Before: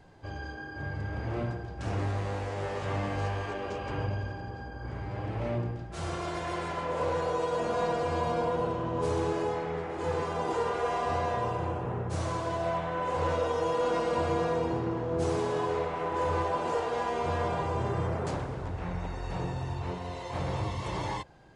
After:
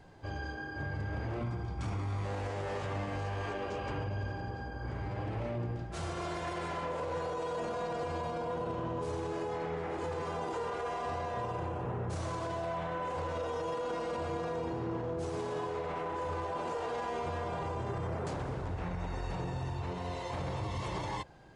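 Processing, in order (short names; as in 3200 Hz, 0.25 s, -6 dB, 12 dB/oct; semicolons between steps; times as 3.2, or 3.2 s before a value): 1.41–2.24 comb 0.9 ms, depth 47%; limiter -28.5 dBFS, peak gain reduction 10.5 dB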